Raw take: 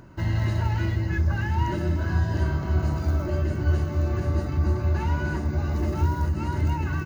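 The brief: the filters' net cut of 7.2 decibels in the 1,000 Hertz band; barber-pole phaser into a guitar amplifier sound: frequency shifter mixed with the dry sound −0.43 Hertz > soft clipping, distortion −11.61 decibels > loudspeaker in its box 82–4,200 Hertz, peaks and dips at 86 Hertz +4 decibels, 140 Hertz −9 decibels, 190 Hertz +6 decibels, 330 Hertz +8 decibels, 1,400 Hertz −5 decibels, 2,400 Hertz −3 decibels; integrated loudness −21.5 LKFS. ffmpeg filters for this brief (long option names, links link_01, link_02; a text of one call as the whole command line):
ffmpeg -i in.wav -filter_complex "[0:a]equalizer=frequency=1000:width_type=o:gain=-7.5,asplit=2[link_01][link_02];[link_02]afreqshift=-0.43[link_03];[link_01][link_03]amix=inputs=2:normalize=1,asoftclip=threshold=-25dB,highpass=82,equalizer=frequency=86:width_type=q:width=4:gain=4,equalizer=frequency=140:width_type=q:width=4:gain=-9,equalizer=frequency=190:width_type=q:width=4:gain=6,equalizer=frequency=330:width_type=q:width=4:gain=8,equalizer=frequency=1400:width_type=q:width=4:gain=-5,equalizer=frequency=2400:width_type=q:width=4:gain=-3,lowpass=frequency=4200:width=0.5412,lowpass=frequency=4200:width=1.3066,volume=10.5dB" out.wav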